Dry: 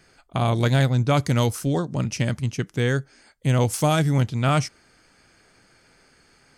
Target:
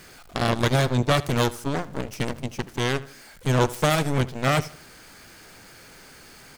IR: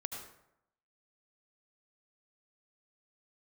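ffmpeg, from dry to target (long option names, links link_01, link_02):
-filter_complex "[0:a]aeval=exprs='val(0)+0.5*0.0168*sgn(val(0))':channel_layout=same,aeval=exprs='0.376*(cos(1*acos(clip(val(0)/0.376,-1,1)))-cos(1*PI/2))+0.133*(cos(2*acos(clip(val(0)/0.376,-1,1)))-cos(2*PI/2))+0.0237*(cos(3*acos(clip(val(0)/0.376,-1,1)))-cos(3*PI/2))+0.0668*(cos(7*acos(clip(val(0)/0.376,-1,1)))-cos(7*PI/2))+0.0211*(cos(8*acos(clip(val(0)/0.376,-1,1)))-cos(8*PI/2))':channel_layout=same,asplit=2[link_01][link_02];[link_02]adelay=78,lowpass=frequency=4900:poles=1,volume=-18dB,asplit=2[link_03][link_04];[link_04]adelay=78,lowpass=frequency=4900:poles=1,volume=0.36,asplit=2[link_05][link_06];[link_06]adelay=78,lowpass=frequency=4900:poles=1,volume=0.36[link_07];[link_01][link_03][link_05][link_07]amix=inputs=4:normalize=0"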